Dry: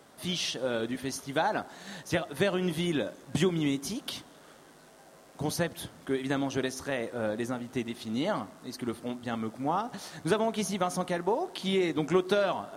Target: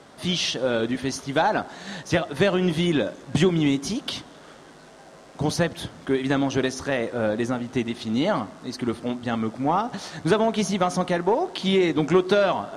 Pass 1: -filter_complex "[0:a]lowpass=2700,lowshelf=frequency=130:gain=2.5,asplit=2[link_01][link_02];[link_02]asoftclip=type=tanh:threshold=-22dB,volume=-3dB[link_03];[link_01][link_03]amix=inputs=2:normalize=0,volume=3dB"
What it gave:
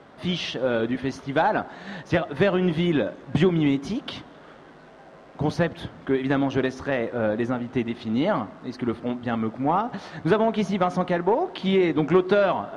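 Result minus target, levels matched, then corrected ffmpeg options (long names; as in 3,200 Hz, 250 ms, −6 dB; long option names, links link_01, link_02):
8,000 Hz band −13.5 dB
-filter_complex "[0:a]lowpass=7000,lowshelf=frequency=130:gain=2.5,asplit=2[link_01][link_02];[link_02]asoftclip=type=tanh:threshold=-22dB,volume=-3dB[link_03];[link_01][link_03]amix=inputs=2:normalize=0,volume=3dB"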